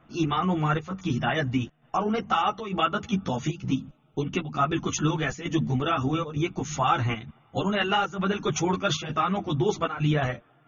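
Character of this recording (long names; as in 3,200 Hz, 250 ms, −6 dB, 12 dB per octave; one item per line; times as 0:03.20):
chopped level 1.1 Hz, depth 65%, duty 85%
a shimmering, thickened sound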